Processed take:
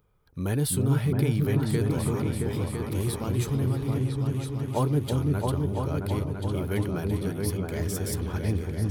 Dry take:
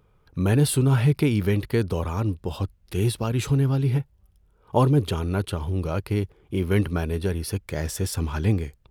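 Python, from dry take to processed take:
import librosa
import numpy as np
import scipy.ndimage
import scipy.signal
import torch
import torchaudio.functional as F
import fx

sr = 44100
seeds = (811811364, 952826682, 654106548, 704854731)

y = fx.high_shelf(x, sr, hz=9700.0, db=11.0)
y = fx.notch(y, sr, hz=2700.0, q=12.0)
y = fx.echo_opening(y, sr, ms=335, hz=400, octaves=2, feedback_pct=70, wet_db=0)
y = F.gain(torch.from_numpy(y), -7.0).numpy()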